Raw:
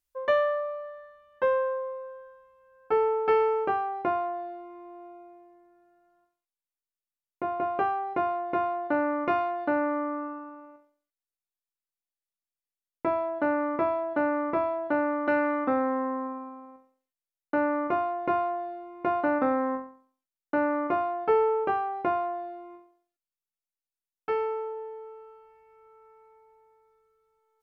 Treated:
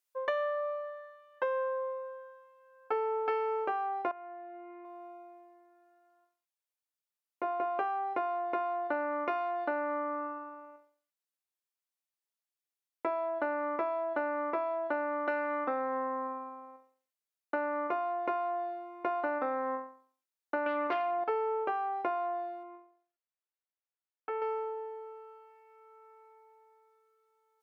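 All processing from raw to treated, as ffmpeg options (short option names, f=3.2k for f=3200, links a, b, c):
-filter_complex "[0:a]asettb=1/sr,asplit=3[a][b][c];[a]atrim=end=4.114[d];[b]atrim=start=4.11:end=4.85,asetpts=PTS-STARTPTS,afade=t=in:d=0.004:c=qsin,afade=t=out:st=0.736:d=0.004:c=qsin,lowpass=f=3k:w=0.5412,lowpass=f=3k:w=1.3066,aecho=1:1:5.2:0.5,atrim=end_sample=32634,acompressor=threshold=-40dB:ratio=10:attack=3.2:release=140:knee=1:detection=peak[e];[c]atrim=start=4.846[f];[d][e]acrossfade=d=0.004:c1=hsin:c2=qsin[g];[g][f]acrossfade=d=0.004:c1=qsin:c2=hsin,asettb=1/sr,asplit=3[h][i][j];[h]atrim=end=20.664[k];[i]atrim=start=20.66:end=21.24,asetpts=PTS-STARTPTS,afade=t=in:d=0.004:c=qsin,afade=t=out:st=0.576:d=0.004:c=qsin,aeval=exprs='0.158*sin(PI/2*1.78*val(0)/0.158)':c=same,equalizer=f=3.3k:w=7.1:g=-5,aeval=exprs='val(0)+0.00794*(sin(2*PI*60*n/s)+sin(2*PI*2*60*n/s)/2+sin(2*PI*3*60*n/s)/3+sin(2*PI*4*60*n/s)/4+sin(2*PI*5*60*n/s)/5)':c=same[l];[j]atrim=start=21.236[m];[k][l]acrossfade=d=0.004:c1=hsin:c2=qsin[n];[n][m]acrossfade=d=0.004:c1=qsin:c2=hsin,asettb=1/sr,asplit=3[o][p][q];[o]atrim=end=22.634[r];[p]atrim=start=22.63:end=24.42,asetpts=PTS-STARTPTS,afade=t=in:d=0.004:c=qsin,afade=t=out:st=1.786:d=0.004:c=qsin,acompressor=threshold=-35dB:ratio=2:attack=3.2:release=140:knee=1:detection=peak,highpass=120,lowpass=2.3k[s];[q]atrim=start=24.416[t];[r][s]acrossfade=d=0.004:c1=hsin:c2=qsin[u];[u][t]acrossfade=d=0.004:c1=qsin:c2=hsin,highpass=430,acompressor=threshold=-29dB:ratio=6"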